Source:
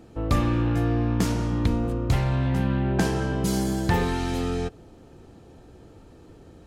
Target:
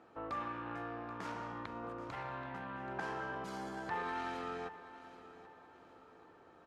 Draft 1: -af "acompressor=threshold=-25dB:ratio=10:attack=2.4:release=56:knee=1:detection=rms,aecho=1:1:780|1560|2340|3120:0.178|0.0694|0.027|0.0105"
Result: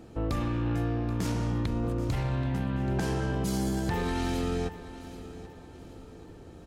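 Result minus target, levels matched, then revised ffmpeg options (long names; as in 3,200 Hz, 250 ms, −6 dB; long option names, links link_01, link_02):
1,000 Hz band −9.5 dB
-af "acompressor=threshold=-25dB:ratio=10:attack=2.4:release=56:knee=1:detection=rms,bandpass=frequency=1200:width_type=q:width=1.5:csg=0,aecho=1:1:780|1560|2340|3120:0.178|0.0694|0.027|0.0105"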